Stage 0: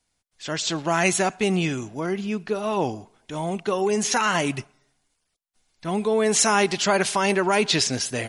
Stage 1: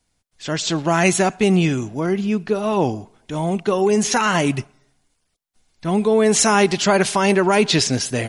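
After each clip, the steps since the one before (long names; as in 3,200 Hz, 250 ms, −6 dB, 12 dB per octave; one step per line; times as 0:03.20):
low-shelf EQ 420 Hz +6 dB
level +2.5 dB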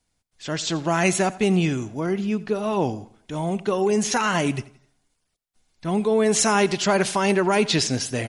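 repeating echo 86 ms, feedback 38%, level −20 dB
level −4 dB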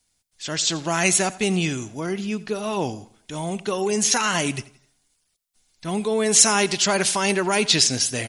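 high-shelf EQ 2,600 Hz +12 dB
level −3 dB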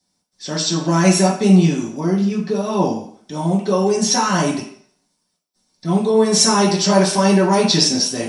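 convolution reverb RT60 0.50 s, pre-delay 3 ms, DRR −7 dB
level −8.5 dB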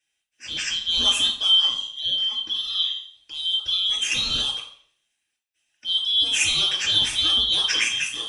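band-splitting scrambler in four parts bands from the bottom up 2413
level −7 dB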